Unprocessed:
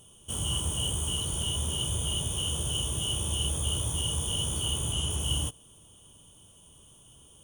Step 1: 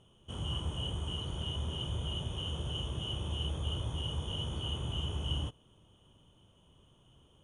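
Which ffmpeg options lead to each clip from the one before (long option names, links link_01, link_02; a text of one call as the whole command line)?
ffmpeg -i in.wav -af "lowpass=2800,volume=-3.5dB" out.wav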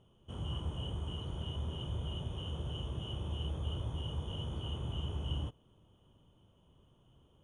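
ffmpeg -i in.wav -af "highshelf=frequency=2200:gain=-9.5,volume=-1.5dB" out.wav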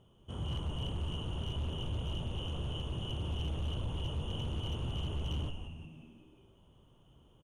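ffmpeg -i in.wav -filter_complex "[0:a]asplit=7[link_01][link_02][link_03][link_04][link_05][link_06][link_07];[link_02]adelay=178,afreqshift=-77,volume=-8dB[link_08];[link_03]adelay=356,afreqshift=-154,volume=-13.4dB[link_09];[link_04]adelay=534,afreqshift=-231,volume=-18.7dB[link_10];[link_05]adelay=712,afreqshift=-308,volume=-24.1dB[link_11];[link_06]adelay=890,afreqshift=-385,volume=-29.4dB[link_12];[link_07]adelay=1068,afreqshift=-462,volume=-34.8dB[link_13];[link_01][link_08][link_09][link_10][link_11][link_12][link_13]amix=inputs=7:normalize=0,asoftclip=type=hard:threshold=-33dB,volume=2dB" out.wav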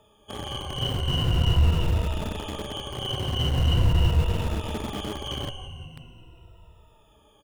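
ffmpeg -i in.wav -filter_complex "[0:a]afftfilt=real='re*pow(10,21/40*sin(2*PI*(2*log(max(b,1)*sr/1024/100)/log(2)-(-0.42)*(pts-256)/sr)))':imag='im*pow(10,21/40*sin(2*PI*(2*log(max(b,1)*sr/1024/100)/log(2)-(-0.42)*(pts-256)/sr)))':win_size=1024:overlap=0.75,acrossover=split=140|380|2500[link_01][link_02][link_03][link_04];[link_02]acrusher=bits=6:mix=0:aa=0.000001[link_05];[link_01][link_05][link_03][link_04]amix=inputs=4:normalize=0,volume=7.5dB" out.wav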